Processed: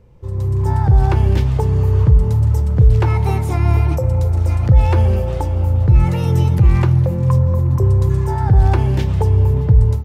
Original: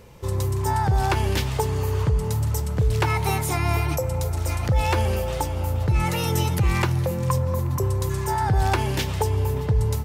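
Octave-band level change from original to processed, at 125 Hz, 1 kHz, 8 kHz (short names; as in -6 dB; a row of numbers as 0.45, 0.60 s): +10.0 dB, 0.0 dB, n/a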